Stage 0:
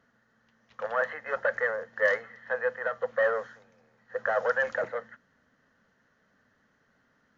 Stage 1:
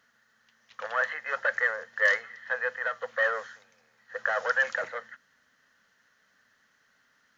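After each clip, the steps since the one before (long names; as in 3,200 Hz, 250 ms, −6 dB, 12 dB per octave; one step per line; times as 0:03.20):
tilt shelving filter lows −9.5 dB, about 1,100 Hz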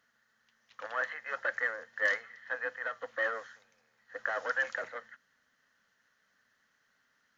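amplitude modulation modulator 220 Hz, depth 20%
level −4.5 dB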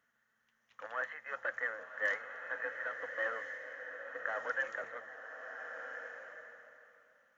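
parametric band 4,500 Hz −10 dB 0.72 octaves
slow-attack reverb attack 1,420 ms, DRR 5.5 dB
level −4 dB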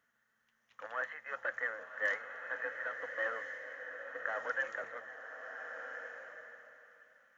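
delay with a high-pass on its return 484 ms, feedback 74%, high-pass 1,500 Hz, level −20 dB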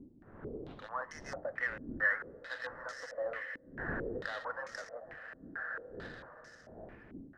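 gap after every zero crossing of 0.074 ms
wind on the microphone 410 Hz −48 dBFS
low-pass on a step sequencer 4.5 Hz 280–5,800 Hz
level −4 dB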